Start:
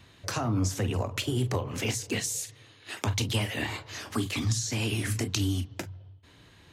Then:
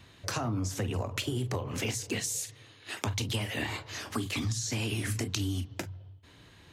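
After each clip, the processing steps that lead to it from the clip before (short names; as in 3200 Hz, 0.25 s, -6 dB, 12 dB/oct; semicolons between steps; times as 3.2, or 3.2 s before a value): compressor, threshold -28 dBFS, peak gain reduction 6 dB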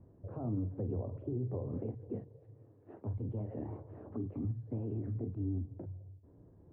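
limiter -26 dBFS, peak gain reduction 11 dB; ladder low-pass 700 Hz, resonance 20%; gain +3 dB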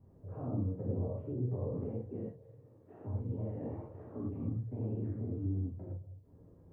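non-linear reverb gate 0.14 s flat, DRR -7 dB; gain -6.5 dB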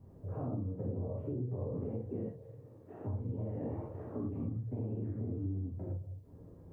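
compressor, threshold -39 dBFS, peak gain reduction 9.5 dB; gain +5 dB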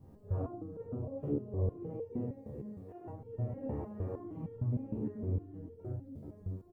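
feedback echo 0.433 s, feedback 43%, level -8.5 dB; stepped resonator 6.5 Hz 72–460 Hz; gain +11 dB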